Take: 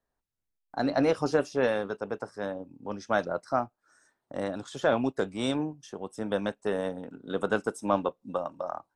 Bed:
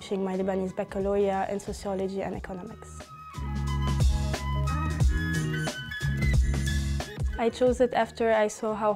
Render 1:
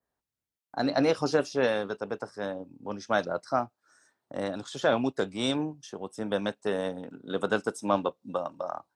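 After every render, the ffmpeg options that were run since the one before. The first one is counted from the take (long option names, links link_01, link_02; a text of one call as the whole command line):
ffmpeg -i in.wav -af "highpass=66,adynamicequalizer=threshold=0.00282:dfrequency=4400:dqfactor=1.1:tfrequency=4400:tqfactor=1.1:attack=5:release=100:ratio=0.375:range=3:mode=boostabove:tftype=bell" out.wav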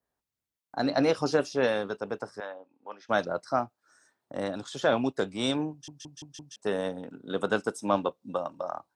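ffmpeg -i in.wav -filter_complex "[0:a]asettb=1/sr,asplit=3[link_01][link_02][link_03];[link_01]atrim=end=2.404[link_04];[link_02]atrim=start=2.4:end=3.09,asetpts=PTS-STARTPTS,afade=type=in:duration=0.004:curve=qsin,afade=type=out:start_time=0.686:duration=0.004:curve=qsin,highpass=720,lowpass=2800[link_05];[link_03]atrim=start=3.086[link_06];[link_04][link_05]acrossfade=duration=0.004:curve1=hsin:curve2=qsin[link_07];[link_07][link_06]acrossfade=duration=0.004:curve1=qsin:curve2=hsin,asplit=6[link_08][link_09][link_10][link_11][link_12][link_13];[link_08]atrim=end=5.882[link_14];[link_09]atrim=start=5.708:end=5.882[link_15];[link_10]atrim=start=5.708:end=5.882[link_16];[link_11]atrim=start=5.708:end=5.882[link_17];[link_12]atrim=start=5.708:end=5.882[link_18];[link_13]atrim=start=6.558[link_19];[link_14][link_15]acrossfade=duration=0.004:curve1=hsin:curve2=hsin[link_20];[link_20][link_16]acrossfade=duration=0.004:curve1=hsin:curve2=hsin[link_21];[link_21][link_17]acrossfade=duration=0.004:curve1=hsin:curve2=hsin[link_22];[link_22][link_18]acrossfade=duration=0.004:curve1=hsin:curve2=hsin[link_23];[link_23][link_19]acrossfade=duration=0.004:curve1=hsin:curve2=hsin" out.wav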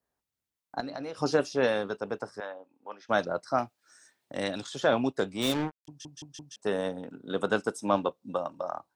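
ffmpeg -i in.wav -filter_complex "[0:a]asettb=1/sr,asplit=3[link_01][link_02][link_03];[link_01]atrim=end=0.804[link_04];[link_02]atrim=start=0.8:end=1.22,asetpts=PTS-STARTPTS,afade=type=in:duration=0.004:curve=qsin,afade=type=out:start_time=0.416:duration=0.004:curve=qsin,acompressor=threshold=-33dB:ratio=16:attack=3.2:release=140:knee=1:detection=peak[link_05];[link_03]atrim=start=1.216[link_06];[link_04][link_05]acrossfade=duration=0.004:curve1=hsin:curve2=qsin[link_07];[link_07][link_06]acrossfade=duration=0.004:curve1=qsin:curve2=hsin,asettb=1/sr,asplit=3[link_08][link_09][link_10];[link_08]atrim=end=3.584[link_11];[link_09]atrim=start=3.58:end=4.67,asetpts=PTS-STARTPTS,afade=type=in:duration=0.004:curve=qsin,afade=type=out:start_time=1.086:duration=0.004:curve=qsin,highshelf=frequency=1700:width_type=q:width=1.5:gain=7[link_12];[link_10]atrim=start=4.666[link_13];[link_11][link_12]acrossfade=duration=0.004:curve1=hsin:curve2=qsin[link_14];[link_14][link_13]acrossfade=duration=0.004:curve1=qsin:curve2=hsin,asplit=3[link_15][link_16][link_17];[link_15]afade=type=out:start_time=5.41:duration=0.02[link_18];[link_16]acrusher=bits=4:mix=0:aa=0.5,afade=type=in:start_time=5.41:duration=0.02,afade=type=out:start_time=5.87:duration=0.02[link_19];[link_17]afade=type=in:start_time=5.87:duration=0.02[link_20];[link_18][link_19][link_20]amix=inputs=3:normalize=0" out.wav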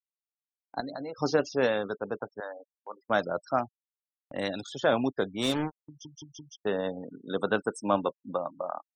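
ffmpeg -i in.wav -af "afftfilt=real='re*gte(hypot(re,im),0.01)':imag='im*gte(hypot(re,im),0.01)':win_size=1024:overlap=0.75,agate=range=-18dB:threshold=-52dB:ratio=16:detection=peak" out.wav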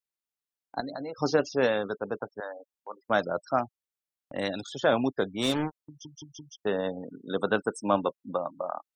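ffmpeg -i in.wav -af "volume=1dB" out.wav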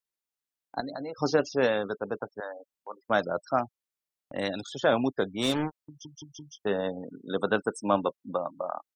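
ffmpeg -i in.wav -filter_complex "[0:a]asplit=3[link_01][link_02][link_03];[link_01]afade=type=out:start_time=6.4:duration=0.02[link_04];[link_02]asplit=2[link_05][link_06];[link_06]adelay=20,volume=-11.5dB[link_07];[link_05][link_07]amix=inputs=2:normalize=0,afade=type=in:start_time=6.4:duration=0.02,afade=type=out:start_time=6.82:duration=0.02[link_08];[link_03]afade=type=in:start_time=6.82:duration=0.02[link_09];[link_04][link_08][link_09]amix=inputs=3:normalize=0" out.wav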